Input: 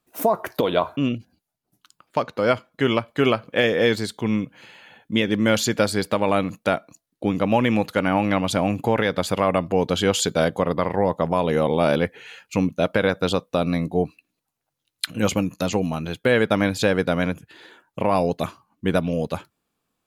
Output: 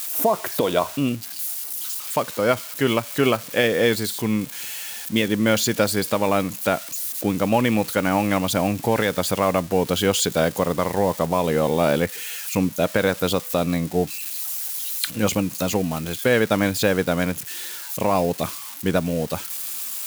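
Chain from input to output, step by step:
spike at every zero crossing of −22.5 dBFS

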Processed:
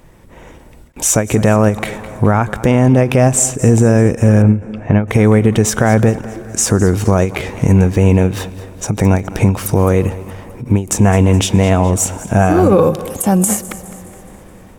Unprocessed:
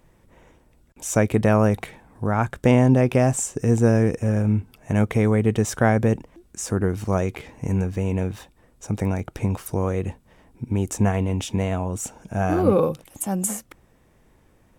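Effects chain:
in parallel at +2.5 dB: downward compressor, threshold −29 dBFS, peak gain reduction 16.5 dB
on the sum: brickwall limiter −12.5 dBFS, peak gain reduction 9 dB
on a send: feedback echo with a high-pass in the loop 209 ms, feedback 51%, high-pass 150 Hz, level −17 dB
on the sum: automatic gain control gain up to 5 dB
0:04.42–0:05.08: Gaussian smoothing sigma 2.5 samples
dense smooth reverb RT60 4.9 s, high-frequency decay 0.4×, pre-delay 80 ms, DRR 19.5 dB
every ending faded ahead of time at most 180 dB per second
level +5 dB

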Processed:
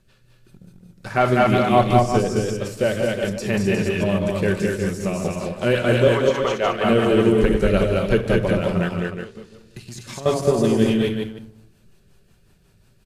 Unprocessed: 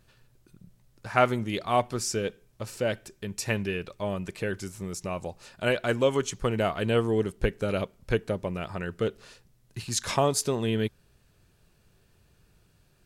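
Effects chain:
delay that plays each chunk backwards 147 ms, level −8 dB
0:01.79–0:02.21: low-shelf EQ 85 Hz +11.5 dB
rectangular room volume 2,300 cubic metres, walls furnished, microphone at 1.1 metres
rotating-speaker cabinet horn 5.5 Hz
0:06.08–0:06.84: three-way crossover with the lows and the highs turned down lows −14 dB, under 450 Hz, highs −21 dB, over 4,700 Hz
0:08.88–0:10.26: downward compressor 4 to 1, threshold −44 dBFS, peak gain reduction 19 dB
leveller curve on the samples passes 1
multi-tap delay 192/215/362 ms −8/−3.5/−8 dB
de-essing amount 90%
level +5.5 dB
MP3 96 kbit/s 32,000 Hz

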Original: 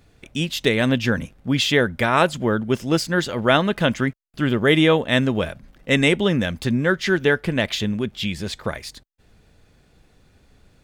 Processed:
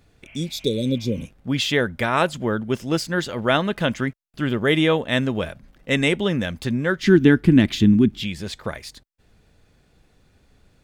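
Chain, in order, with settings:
0:00.30–0:01.20: healed spectral selection 590–3,300 Hz both
0:07.02–0:08.23: low shelf with overshoot 400 Hz +9 dB, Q 3
level −2.5 dB

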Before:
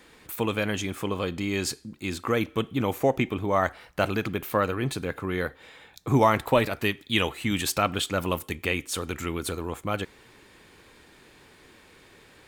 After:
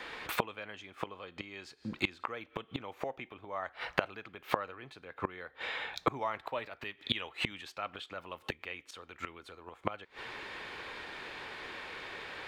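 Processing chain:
gate with flip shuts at −22 dBFS, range −26 dB
three-way crossover with the lows and the highs turned down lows −13 dB, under 500 Hz, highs −21 dB, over 4,400 Hz
level +12.5 dB

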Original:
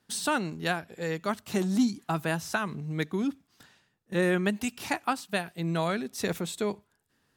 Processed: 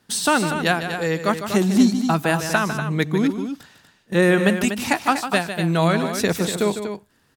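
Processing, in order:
loudspeakers that aren't time-aligned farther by 52 metres −10 dB, 83 metres −9 dB
level +9 dB

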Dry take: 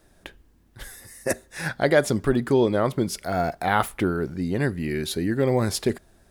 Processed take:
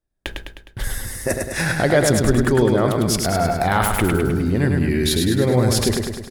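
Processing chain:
noise gate −49 dBFS, range −39 dB
low-shelf EQ 110 Hz +10.5 dB
in parallel at 0 dB: compressor whose output falls as the input rises −31 dBFS, ratio −1
on the sum: repeating echo 103 ms, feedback 56%, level −4 dB

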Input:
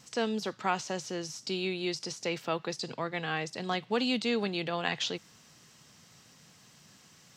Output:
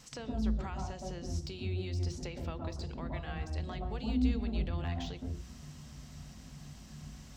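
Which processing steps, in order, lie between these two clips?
sub-octave generator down 2 octaves, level −2 dB
de-essing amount 90%
hum removal 60.03 Hz, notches 12
downward compressor 3 to 1, threshold −46 dBFS, peak gain reduction 16.5 dB
on a send: convolution reverb RT60 0.35 s, pre-delay 115 ms, DRR 3 dB

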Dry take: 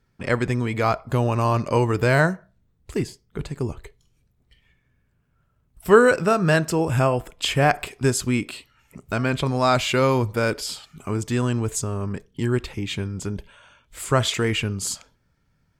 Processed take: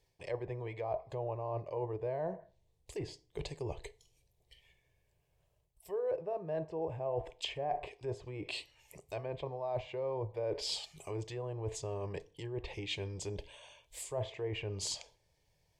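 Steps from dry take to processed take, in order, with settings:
treble cut that deepens with the level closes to 1,000 Hz, closed at −18 dBFS
low-shelf EQ 280 Hz −10 dB
reversed playback
downward compressor 16 to 1, threshold −33 dBFS, peak gain reduction 22 dB
reversed playback
phaser with its sweep stopped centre 570 Hz, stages 4
feedback delay network reverb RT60 0.51 s, low-frequency decay 0.95×, high-frequency decay 0.7×, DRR 17 dB
level +2 dB

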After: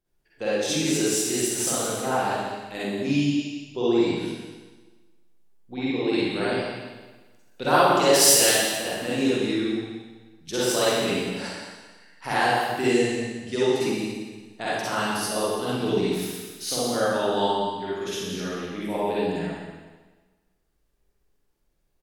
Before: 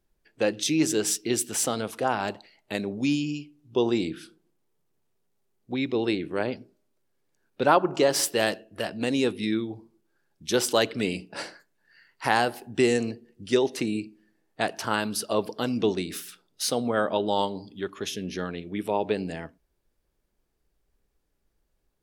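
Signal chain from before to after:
0:06.13–0:08.49: high-shelf EQ 2,900 Hz +11 dB
single-tap delay 173 ms −10.5 dB
convolution reverb RT60 1.3 s, pre-delay 43 ms, DRR −9.5 dB
level −8 dB

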